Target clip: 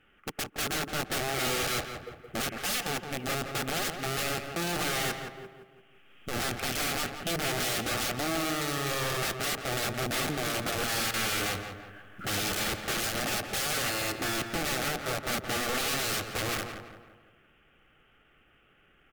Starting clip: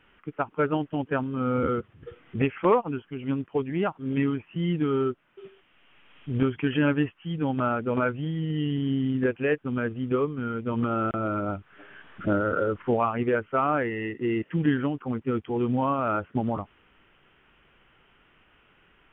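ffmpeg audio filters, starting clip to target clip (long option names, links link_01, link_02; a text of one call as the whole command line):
ffmpeg -i in.wav -filter_complex "[0:a]asplit=2[link_01][link_02];[link_02]acrusher=bits=4:mix=0:aa=0.5,volume=-3.5dB[link_03];[link_01][link_03]amix=inputs=2:normalize=0,aeval=exprs='(mod(12.6*val(0)+1,2)-1)/12.6':channel_layout=same,asplit=2[link_04][link_05];[link_05]adelay=170,lowpass=frequency=2500:poles=1,volume=-6.5dB,asplit=2[link_06][link_07];[link_07]adelay=170,lowpass=frequency=2500:poles=1,volume=0.47,asplit=2[link_08][link_09];[link_09]adelay=170,lowpass=frequency=2500:poles=1,volume=0.47,asplit=2[link_10][link_11];[link_11]adelay=170,lowpass=frequency=2500:poles=1,volume=0.47,asplit=2[link_12][link_13];[link_13]adelay=170,lowpass=frequency=2500:poles=1,volume=0.47,asplit=2[link_14][link_15];[link_15]adelay=170,lowpass=frequency=2500:poles=1,volume=0.47[link_16];[link_06][link_08][link_10][link_12][link_14][link_16]amix=inputs=6:normalize=0[link_17];[link_04][link_17]amix=inputs=2:normalize=0,acrusher=bits=6:mode=log:mix=0:aa=0.000001,asuperstop=centerf=980:order=4:qfactor=5.3,volume=-3dB" -ar 44100 -c:a libmp3lame -b:a 112k out.mp3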